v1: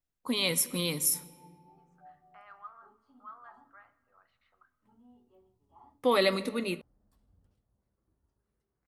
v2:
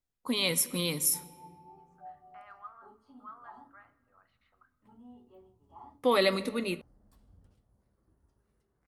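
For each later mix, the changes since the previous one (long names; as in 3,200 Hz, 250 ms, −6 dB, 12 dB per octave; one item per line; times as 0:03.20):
background +7.0 dB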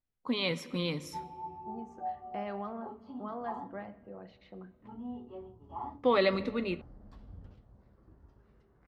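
second voice: remove four-pole ladder band-pass 1,400 Hz, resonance 70%
background +11.5 dB
master: add high-frequency loss of the air 200 metres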